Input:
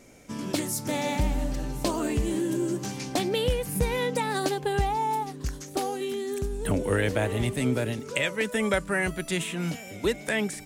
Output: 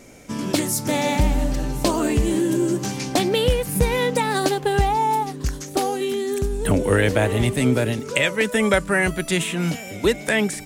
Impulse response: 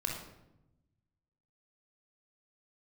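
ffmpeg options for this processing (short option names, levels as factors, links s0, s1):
-filter_complex "[0:a]asettb=1/sr,asplit=3[s0][s1][s2];[s0]atrim=end=3.274[s3];[s1]atrim=start=3.27:end=4.88,asetpts=PTS-STARTPTS,afade=t=in:d=0.004:c=qsin,afade=t=out:st=1.606:d=0.004:c=qsin,aeval=exprs='sgn(val(0))*max(abs(val(0))-0.00355,0)':c=same[s4];[s2]atrim=start=4.876[s5];[s3][s4]acrossfade=d=0.004:c1=hsin:c2=qsin[s6];[s6][s5]acrossfade=d=0.004:c1=qsin:c2=hsin,volume=2.24"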